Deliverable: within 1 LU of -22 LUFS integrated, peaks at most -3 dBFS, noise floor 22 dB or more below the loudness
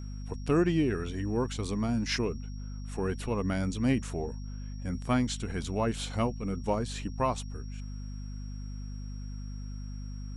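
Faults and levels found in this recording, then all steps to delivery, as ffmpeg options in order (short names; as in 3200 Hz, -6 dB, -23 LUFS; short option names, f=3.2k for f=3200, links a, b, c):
hum 50 Hz; harmonics up to 250 Hz; hum level -36 dBFS; steady tone 5600 Hz; tone level -56 dBFS; loudness -32.5 LUFS; peak -15.0 dBFS; loudness target -22.0 LUFS
-> -af "bandreject=f=50:t=h:w=6,bandreject=f=100:t=h:w=6,bandreject=f=150:t=h:w=6,bandreject=f=200:t=h:w=6,bandreject=f=250:t=h:w=6"
-af "bandreject=f=5.6k:w=30"
-af "volume=10.5dB"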